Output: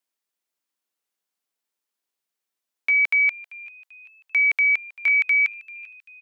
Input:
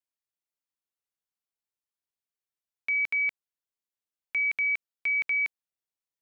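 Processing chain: HPF 190 Hz 24 dB/oct, from 2.9 s 530 Hz, from 5.08 s 1200 Hz; frequency-shifting echo 0.39 s, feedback 44%, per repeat +110 Hz, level -21 dB; gain +8 dB

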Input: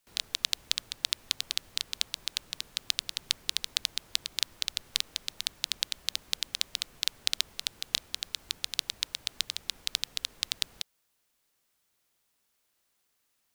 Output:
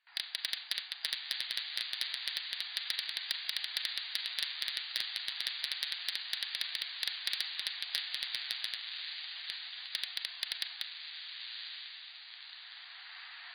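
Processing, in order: recorder AGC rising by 12 dB/s; high shelf 2300 Hz +4 dB; Schroeder reverb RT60 0.65 s, combs from 30 ms, DRR 13 dB; 8.75–9.93 auto swell 0.137 s; bell 1800 Hz +10.5 dB 0.68 oct; on a send: diffused feedback echo 1.098 s, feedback 52%, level -10 dB; on the sum: flange 0.29 Hz, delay 1.7 ms, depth 7.4 ms, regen -53%; FFT band-pass 670–4800 Hz; soft clip -19.5 dBFS, distortion -5 dB

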